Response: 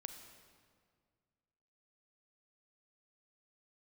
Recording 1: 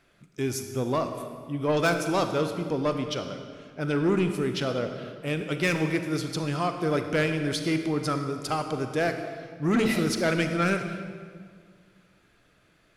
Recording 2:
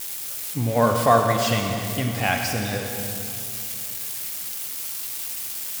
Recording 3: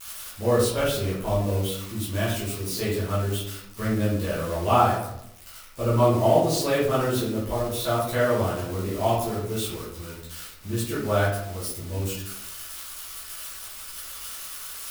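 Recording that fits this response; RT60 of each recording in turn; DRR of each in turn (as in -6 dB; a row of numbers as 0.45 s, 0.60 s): 1; 1.9 s, 2.9 s, 0.80 s; 6.5 dB, 2.5 dB, -10.5 dB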